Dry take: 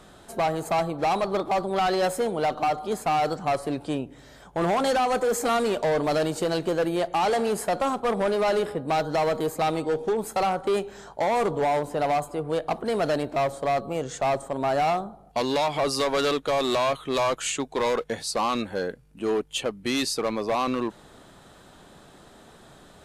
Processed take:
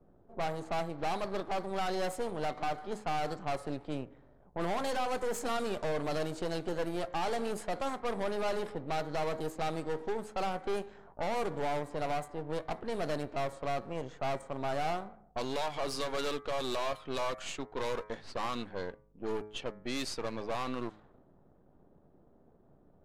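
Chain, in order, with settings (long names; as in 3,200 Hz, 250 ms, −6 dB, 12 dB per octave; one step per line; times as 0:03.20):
gain on one half-wave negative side −12 dB
hum removal 106.2 Hz, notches 22
low-pass that shuts in the quiet parts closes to 470 Hz, open at −23.5 dBFS
level −6.5 dB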